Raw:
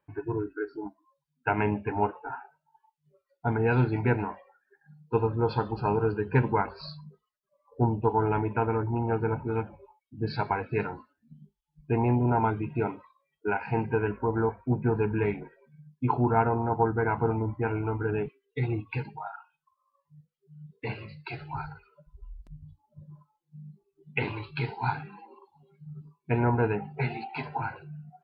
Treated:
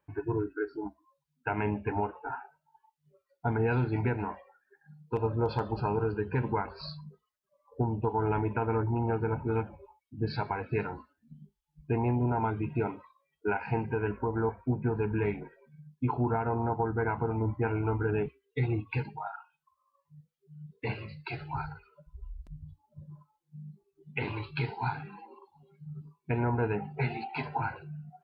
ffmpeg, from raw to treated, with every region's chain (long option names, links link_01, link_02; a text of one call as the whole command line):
ffmpeg -i in.wav -filter_complex "[0:a]asettb=1/sr,asplit=3[link_01][link_02][link_03];[link_01]atrim=end=5.164[link_04];[link_02]atrim=start=5.16:end=5.8,asetpts=PTS-STARTPTS,afade=type=in:duration=0.004:curve=qsin,afade=type=out:start_time=0.636:duration=0.004:curve=qsin,equalizer=frequency=610:width_type=o:width=0.21:gain=11.5,aeval=exprs='0.168*(abs(mod(val(0)/0.168+3,4)-2)-1)':channel_layout=same[link_05];[link_03]atrim=start=5.796[link_06];[link_04][link_05]acrossfade=duration=0.004:curve1=hsin:curve2=qsin[link_07];[link_07][link_06]acrossfade=duration=0.004:curve1=qsin:curve2=hsin,equalizer=frequency=68:width=3.4:gain=9.5,alimiter=limit=-19.5dB:level=0:latency=1:release=203" out.wav